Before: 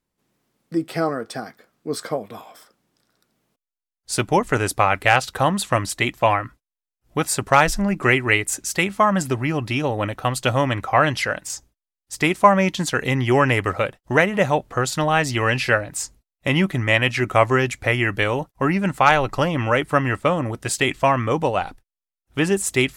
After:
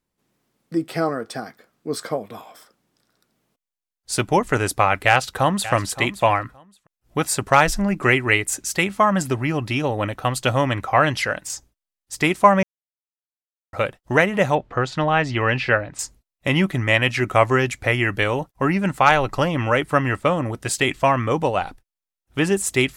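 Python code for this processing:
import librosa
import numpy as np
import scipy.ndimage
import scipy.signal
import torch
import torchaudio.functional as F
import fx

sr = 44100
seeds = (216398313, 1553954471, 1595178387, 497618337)

y = fx.echo_throw(x, sr, start_s=5.07, length_s=0.65, ms=570, feedback_pct=15, wet_db=-14.0)
y = fx.lowpass(y, sr, hz=3400.0, slope=12, at=(14.55, 15.99))
y = fx.edit(y, sr, fx.silence(start_s=12.63, length_s=1.1), tone=tone)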